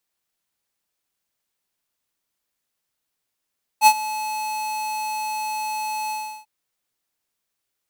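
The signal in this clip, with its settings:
note with an ADSR envelope square 860 Hz, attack 56 ms, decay 63 ms, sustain −17.5 dB, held 2.30 s, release 343 ms −9.5 dBFS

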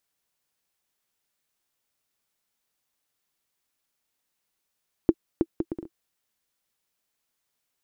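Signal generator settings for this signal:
bouncing ball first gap 0.32 s, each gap 0.6, 331 Hz, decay 50 ms −6 dBFS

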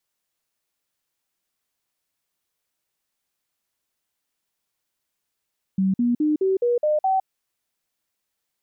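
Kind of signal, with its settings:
stepped sweep 191 Hz up, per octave 3, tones 7, 0.16 s, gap 0.05 s −17 dBFS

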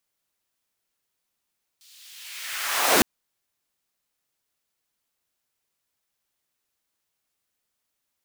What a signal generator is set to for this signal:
filter sweep on noise pink, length 1.21 s highpass, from 4,100 Hz, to 220 Hz, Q 1.5, linear, gain ramp +36 dB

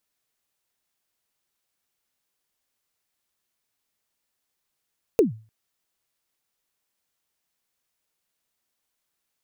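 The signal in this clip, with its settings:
synth kick length 0.30 s, from 490 Hz, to 110 Hz, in 134 ms, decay 0.36 s, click on, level −10 dB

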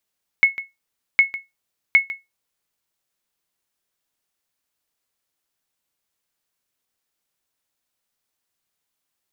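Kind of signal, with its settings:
ping with an echo 2,190 Hz, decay 0.19 s, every 0.76 s, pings 3, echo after 0.15 s, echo −15.5 dB −5 dBFS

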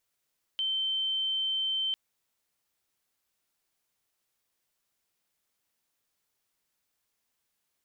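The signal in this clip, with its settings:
tone sine 3,100 Hz −27 dBFS 1.35 s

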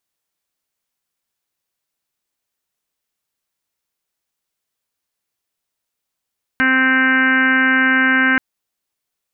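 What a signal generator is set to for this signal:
steady harmonic partials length 1.78 s, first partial 261 Hz, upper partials −14/−13/−9/−8/4/−3.5/−4/−10/−18/−15 dB, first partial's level −18 dB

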